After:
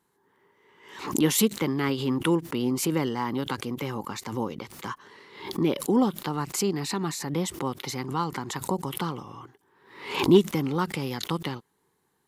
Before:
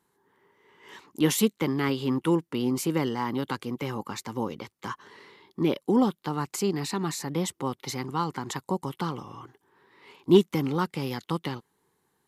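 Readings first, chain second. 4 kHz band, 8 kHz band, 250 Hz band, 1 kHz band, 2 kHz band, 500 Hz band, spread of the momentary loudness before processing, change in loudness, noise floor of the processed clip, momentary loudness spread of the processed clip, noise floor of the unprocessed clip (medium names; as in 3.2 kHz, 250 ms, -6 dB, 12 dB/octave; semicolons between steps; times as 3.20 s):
+2.5 dB, +3.5 dB, +0.5 dB, +0.5 dB, +2.0 dB, +0.5 dB, 15 LU, +0.5 dB, -72 dBFS, 15 LU, -76 dBFS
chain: swell ahead of each attack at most 90 dB/s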